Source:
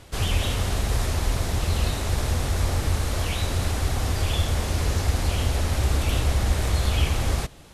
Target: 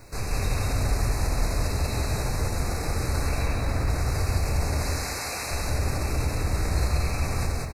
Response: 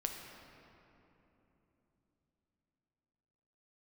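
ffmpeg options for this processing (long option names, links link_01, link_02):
-filter_complex "[0:a]asettb=1/sr,asplit=3[link_01][link_02][link_03];[link_01]atrim=end=3.274[link_04];[link_02]atrim=start=3.27:end=3.9,asetpts=PTS-STARTPTS,afade=type=in:duration=0.004:curve=qsin,afade=type=out:start_time=0.626:duration=0.004:curve=qsin,acrossover=split=3200[link_05][link_06];[link_06]acompressor=threshold=-42dB:ratio=4:attack=1:release=60[link_07];[link_05][link_07]amix=inputs=2:normalize=0[link_08];[link_03]atrim=start=3.896[link_09];[link_04][link_08]acrossfade=duration=0.004:curve1=hsin:curve2=qsin[link_10];[link_10][link_09]acrossfade=duration=0.004:curve1=qsin:curve2=hsin,asettb=1/sr,asplit=3[link_11][link_12][link_13];[link_11]atrim=end=4.804[link_14];[link_12]atrim=start=4.8:end=5.51,asetpts=PTS-STARTPTS,afade=type=in:duration=0.004:curve=qsin,afade=type=out:start_time=0.706:duration=0.004:curve=qsin,highpass=frequency=1100:poles=1[link_15];[link_13]atrim=start=5.506[link_16];[link_14][link_15]acrossfade=duration=0.004:curve1=hsin:curve2=qsin[link_17];[link_17][link_16]acrossfade=duration=0.004:curve1=qsin:curve2=hsin,alimiter=limit=-21.5dB:level=0:latency=1:release=29,acrusher=bits=9:mix=0:aa=0.000001,asuperstop=centerf=3200:order=20:qfactor=2.8,aecho=1:1:81.63|134.1|186.6:0.355|0.282|0.891[link_18];[1:a]atrim=start_sample=2205,afade=type=out:start_time=0.33:duration=0.01,atrim=end_sample=14994[link_19];[link_18][link_19]afir=irnorm=-1:irlink=0"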